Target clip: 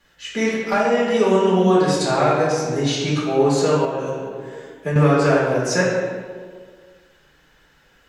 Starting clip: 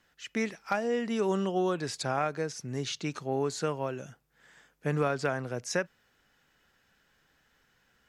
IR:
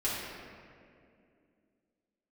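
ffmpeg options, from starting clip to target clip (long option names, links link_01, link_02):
-filter_complex "[1:a]atrim=start_sample=2205,asetrate=66150,aresample=44100[link_01];[0:a][link_01]afir=irnorm=-1:irlink=0,asettb=1/sr,asplit=3[link_02][link_03][link_04];[link_02]atrim=end=3.844[link_05];[link_03]atrim=start=3.84:end=4.96,asetpts=PTS-STARTPTS,afade=type=in:duration=0.004:curve=qsin,afade=type=out:start_time=1.116:duration=0.004:curve=qsin,acompressor=threshold=-29dB:ratio=6[link_06];[link_04]atrim=start=4.956[link_07];[link_05][link_06]acrossfade=duration=0.004:curve1=hsin:curve2=qsin[link_08];[link_08][link_07]acrossfade=duration=0.004:curve1=qsin:curve2=hsin,volume=8.5dB"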